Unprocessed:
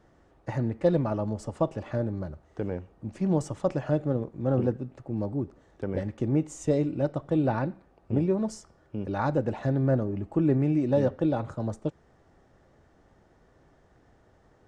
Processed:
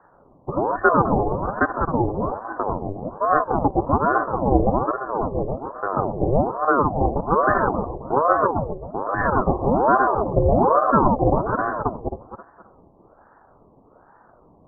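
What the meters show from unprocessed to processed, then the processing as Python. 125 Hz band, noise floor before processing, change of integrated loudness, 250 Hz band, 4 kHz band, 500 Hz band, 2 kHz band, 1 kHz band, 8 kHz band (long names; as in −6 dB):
+2.0 dB, −62 dBFS, +7.5 dB, +3.0 dB, can't be measured, +7.5 dB, +17.0 dB, +19.0 dB, below −30 dB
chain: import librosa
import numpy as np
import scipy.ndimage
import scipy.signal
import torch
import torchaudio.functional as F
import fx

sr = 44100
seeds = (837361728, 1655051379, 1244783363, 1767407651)

y = fx.reverse_delay_fb(x, sr, ms=133, feedback_pct=54, wet_db=-3.5)
y = scipy.signal.sosfilt(scipy.signal.cheby1(5, 1.0, 900.0, 'lowpass', fs=sr, output='sos'), y)
y = fx.ring_lfo(y, sr, carrier_hz=560.0, swing_pct=65, hz=1.2)
y = y * librosa.db_to_amplitude(9.0)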